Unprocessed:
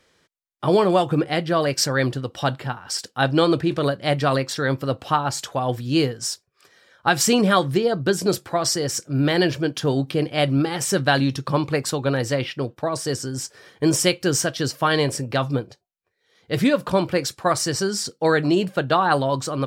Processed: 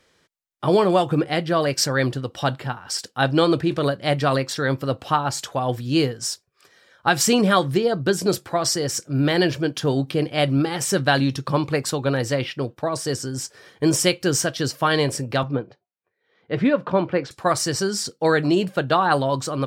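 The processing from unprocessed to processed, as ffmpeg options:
ffmpeg -i in.wav -filter_complex "[0:a]asettb=1/sr,asplit=3[link_01][link_02][link_03];[link_01]atrim=end=15.434[link_04];[link_02]atrim=start=15.43:end=17.31,asetpts=PTS-STARTPTS,afade=type=in:duration=0.004:curve=qsin,afade=type=out:start_time=1.876:duration=0.004:curve=qsin,highpass=130,lowpass=2300[link_05];[link_03]atrim=start=17.306[link_06];[link_04][link_05]acrossfade=duration=0.004:curve1=hsin:curve2=qsin[link_07];[link_07][link_06]acrossfade=duration=0.004:curve1=qsin:curve2=hsin" out.wav

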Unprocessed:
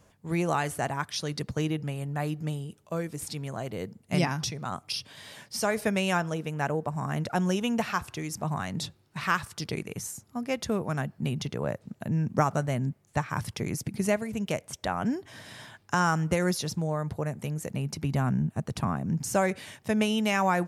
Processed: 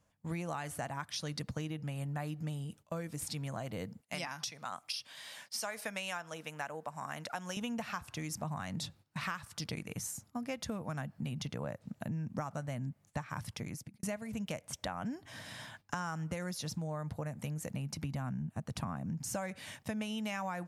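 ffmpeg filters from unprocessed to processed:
ffmpeg -i in.wav -filter_complex "[0:a]asettb=1/sr,asplit=3[link_01][link_02][link_03];[link_01]atrim=end=4.004[link_04];[link_02]atrim=start=4:end=7.57,asetpts=PTS-STARTPTS,afade=type=in:duration=0.004:curve=qsin,afade=type=out:start_time=3.566:duration=0.004:curve=qsin,highpass=frequency=860:poles=1[link_05];[link_03]atrim=start=7.566[link_06];[link_04][link_05]acrossfade=duration=0.004:curve1=hsin:curve2=qsin[link_07];[link_07][link_06]acrossfade=duration=0.004:curve1=qsin:curve2=hsin,asplit=2[link_08][link_09];[link_08]atrim=end=14.03,asetpts=PTS-STARTPTS,afade=type=out:start_time=13.27:duration=0.76[link_10];[link_09]atrim=start=14.03,asetpts=PTS-STARTPTS,afade=type=in:duration=0.004:curve=hsin[link_11];[link_10][link_11]concat=n=2:v=0:a=1,equalizer=frequency=390:width=4.9:gain=-12,agate=range=-12dB:threshold=-53dB:ratio=16:detection=peak,acompressor=threshold=-34dB:ratio=6,volume=-1.5dB" out.wav

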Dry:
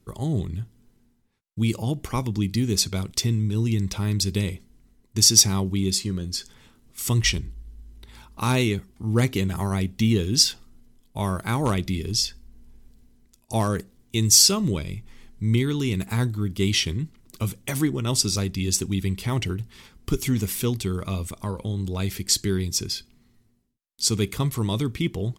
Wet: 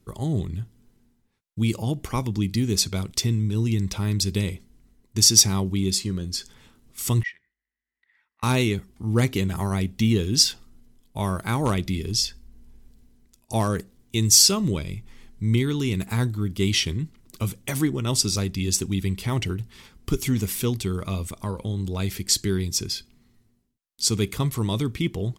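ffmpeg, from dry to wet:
ffmpeg -i in.wav -filter_complex "[0:a]asettb=1/sr,asplit=3[link_01][link_02][link_03];[link_01]atrim=end=7.234[link_04];[link_02]atrim=start=7.23:end=8.43,asetpts=PTS-STARTPTS,afade=type=in:duration=0.004:curve=qsin,afade=type=out:start_time=1.196:duration=0.004:curve=qsin,bandpass=frequency=1900:width_type=q:width=15[link_05];[link_03]atrim=start=8.426[link_06];[link_04][link_05]acrossfade=duration=0.004:curve1=hsin:curve2=qsin[link_07];[link_07][link_06]acrossfade=duration=0.004:curve1=qsin:curve2=hsin" out.wav

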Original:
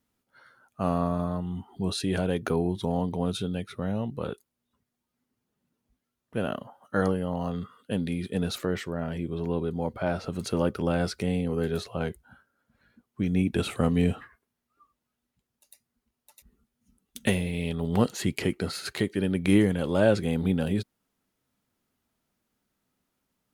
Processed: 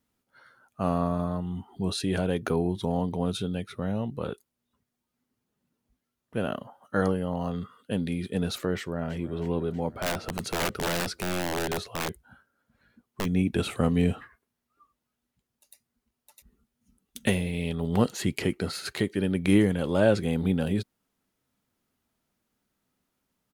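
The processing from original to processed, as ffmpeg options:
ffmpeg -i in.wav -filter_complex "[0:a]asplit=2[link_01][link_02];[link_02]afade=type=in:start_time=8.77:duration=0.01,afade=type=out:start_time=9.39:duration=0.01,aecho=0:1:320|640|960|1280|1600|1920|2240:0.188365|0.122437|0.0795842|0.0517297|0.0336243|0.0218558|0.0142063[link_03];[link_01][link_03]amix=inputs=2:normalize=0,asplit=3[link_04][link_05][link_06];[link_04]afade=type=out:start_time=9.95:duration=0.02[link_07];[link_05]aeval=exprs='(mod(11.9*val(0)+1,2)-1)/11.9':channel_layout=same,afade=type=in:start_time=9.95:duration=0.02,afade=type=out:start_time=13.24:duration=0.02[link_08];[link_06]afade=type=in:start_time=13.24:duration=0.02[link_09];[link_07][link_08][link_09]amix=inputs=3:normalize=0" out.wav

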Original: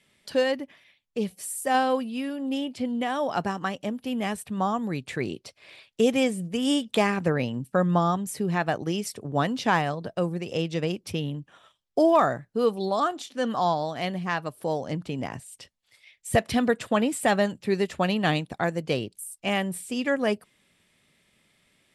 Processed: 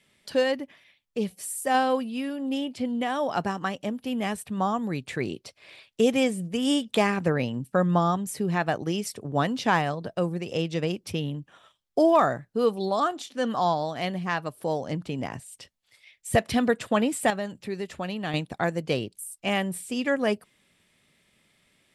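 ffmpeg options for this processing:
ffmpeg -i in.wav -filter_complex "[0:a]asettb=1/sr,asplit=3[link_01][link_02][link_03];[link_01]atrim=end=17.304[link_04];[link_02]atrim=start=17.3:end=18.34,asetpts=PTS-STARTPTS,afade=type=in:duration=0.004:curve=qsin,afade=type=out:start_time=1.036:duration=0.004:curve=qsin,acompressor=threshold=-41dB:ratio=1.5:attack=3.2:release=140:knee=1:detection=peak[link_05];[link_03]atrim=start=18.336[link_06];[link_04][link_05]acrossfade=duration=0.004:curve1=hsin:curve2=qsin[link_07];[link_07][link_06]acrossfade=duration=0.004:curve1=qsin:curve2=hsin" out.wav

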